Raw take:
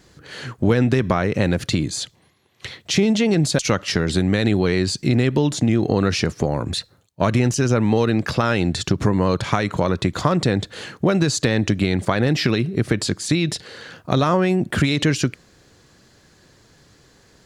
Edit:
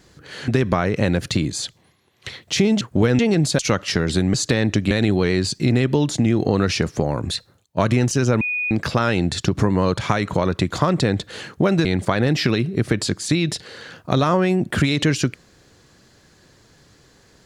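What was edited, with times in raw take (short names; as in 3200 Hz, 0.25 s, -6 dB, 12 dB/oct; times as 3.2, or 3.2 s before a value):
0.48–0.86 move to 3.19
7.84–8.14 bleep 2470 Hz -20.5 dBFS
11.28–11.85 move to 4.34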